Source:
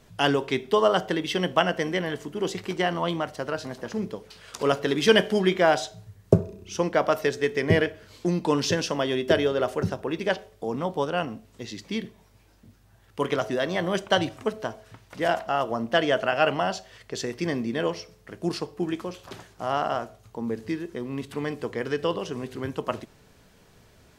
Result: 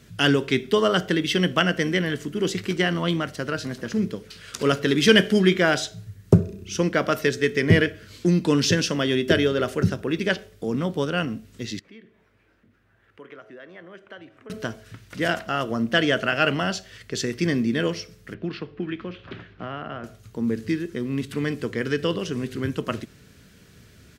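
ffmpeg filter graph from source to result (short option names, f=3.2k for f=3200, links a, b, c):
-filter_complex "[0:a]asettb=1/sr,asplit=3[a][b][c];[a]atrim=end=11.794[d];[b]atrim=start=11.79:end=14.5,asetpts=PTS-STARTPTS,afade=t=in:d=0.004:c=qsin,afade=t=out:st=2.706:d=0.004:c=qsin,acompressor=threshold=-53dB:ratio=2:attack=3.2:release=140:knee=1:detection=peak,acrossover=split=330 2500:gain=0.2 1 0.0891[e][f][g];[e][f][g]amix=inputs=3:normalize=0[h];[c]atrim=start=14.496[i];[d][h]acrossfade=d=0.004:c1=hsin:c2=qsin[j];[j][i]acrossfade=d=0.004:c1=qsin:c2=hsin,asettb=1/sr,asplit=3[k][l][m];[k]atrim=end=18.344[n];[l]atrim=start=18.34:end=20.04,asetpts=PTS-STARTPTS,afade=t=in:d=0.004:c=qsin,afade=t=out:st=1.696:d=0.004:c=qsin,lowpass=f=3.2k:w=0.5412,lowpass=f=3.2k:w=1.3066,acrossover=split=130|980[o][p][q];[o]acompressor=threshold=-51dB:ratio=4[r];[p]acompressor=threshold=-33dB:ratio=4[s];[q]acompressor=threshold=-39dB:ratio=4[t];[r][s][t]amix=inputs=3:normalize=0[u];[m]atrim=start=20.036[v];[n][u]acrossfade=d=0.004:c1=hsin:c2=qsin[w];[w][v]acrossfade=d=0.004:c1=qsin:c2=hsin,firequalizer=gain_entry='entry(220,0);entry(850,-15);entry(1400,-2)':delay=0.05:min_phase=1,acontrast=79,highpass=49"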